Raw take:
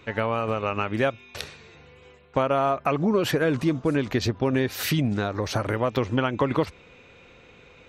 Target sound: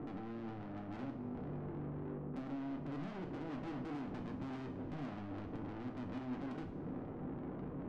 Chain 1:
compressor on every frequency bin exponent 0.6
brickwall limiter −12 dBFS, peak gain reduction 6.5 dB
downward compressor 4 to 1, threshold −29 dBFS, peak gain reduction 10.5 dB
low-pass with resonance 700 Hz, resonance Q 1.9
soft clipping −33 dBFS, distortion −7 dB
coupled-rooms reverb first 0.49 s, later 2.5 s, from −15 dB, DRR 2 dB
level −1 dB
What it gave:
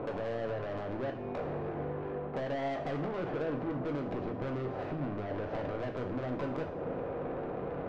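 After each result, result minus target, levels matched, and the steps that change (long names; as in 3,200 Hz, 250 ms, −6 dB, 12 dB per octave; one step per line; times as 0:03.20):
500 Hz band +6.5 dB; soft clipping: distortion −4 dB
change: low-pass with resonance 270 Hz, resonance Q 1.9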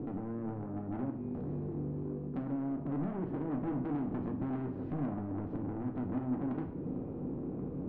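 soft clipping: distortion −5 dB
change: soft clipping −43 dBFS, distortion −3 dB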